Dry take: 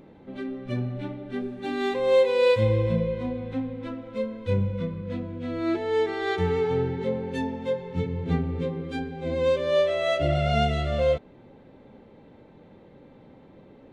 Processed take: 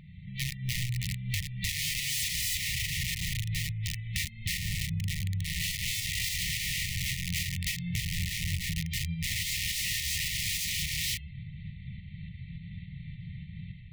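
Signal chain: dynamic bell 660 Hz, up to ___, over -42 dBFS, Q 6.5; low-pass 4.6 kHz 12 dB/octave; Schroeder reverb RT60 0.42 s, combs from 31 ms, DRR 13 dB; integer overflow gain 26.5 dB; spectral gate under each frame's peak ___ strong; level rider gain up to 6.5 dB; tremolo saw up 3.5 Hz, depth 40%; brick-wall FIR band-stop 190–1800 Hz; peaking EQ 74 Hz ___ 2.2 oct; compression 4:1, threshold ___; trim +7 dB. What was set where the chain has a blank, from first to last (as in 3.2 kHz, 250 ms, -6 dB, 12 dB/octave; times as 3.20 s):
-4 dB, -45 dB, +7 dB, -38 dBFS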